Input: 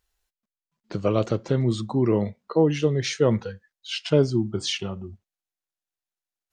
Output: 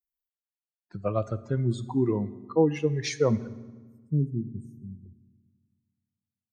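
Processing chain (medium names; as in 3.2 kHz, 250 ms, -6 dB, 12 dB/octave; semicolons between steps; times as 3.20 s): expander on every frequency bin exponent 2; 3.47–5.06 s: inverse Chebyshev band-stop 950–4500 Hz, stop band 70 dB; reverberation RT60 1.4 s, pre-delay 22 ms, DRR 15.5 dB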